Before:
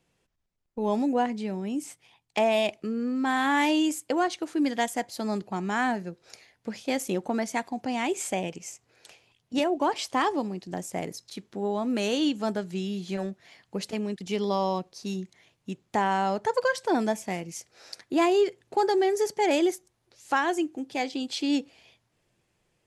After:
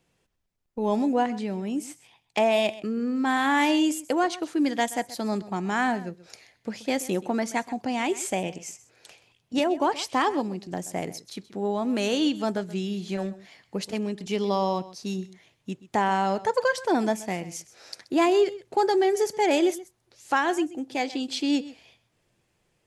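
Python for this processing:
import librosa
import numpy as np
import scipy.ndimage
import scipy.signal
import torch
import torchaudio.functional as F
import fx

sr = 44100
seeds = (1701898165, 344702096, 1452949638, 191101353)

y = x + 10.0 ** (-17.5 / 20.0) * np.pad(x, (int(129 * sr / 1000.0), 0))[:len(x)]
y = F.gain(torch.from_numpy(y), 1.5).numpy()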